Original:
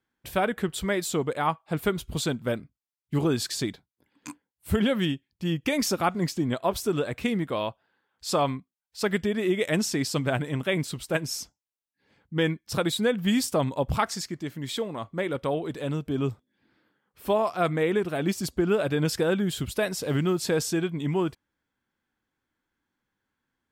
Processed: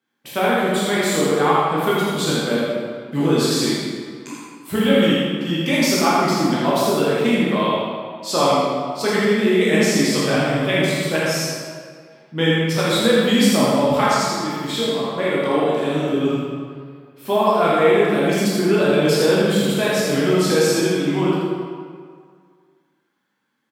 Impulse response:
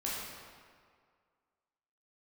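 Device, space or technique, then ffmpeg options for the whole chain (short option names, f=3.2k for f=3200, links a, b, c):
PA in a hall: -filter_complex "[0:a]asettb=1/sr,asplit=3[a][b][c];[a]atrim=end=15.454[d];[b]atrim=start=15.45:end=16.1,asetpts=PTS-STARTPTS,afade=t=in:d=0.004:c=qsin,afade=t=out:st=0.646:d=0.004:c=qsin,asplit=2[e][f];[f]adelay=46,volume=-4dB[g];[e][g]amix=inputs=2:normalize=0,atrim=end_sample=28665[h];[c]atrim=start=16.096[i];[d][h]acrossfade=d=0.004:c1=hsin:c2=qsin[j];[j][i]acrossfade=d=0.004:c1=qsin:c2=hsin,highpass=f=150:w=0.5412,highpass=f=150:w=1.3066,equalizer=f=3.6k:t=o:w=0.77:g=3,aecho=1:1:81:0.596[k];[1:a]atrim=start_sample=2205[l];[k][l]afir=irnorm=-1:irlink=0,volume=4dB"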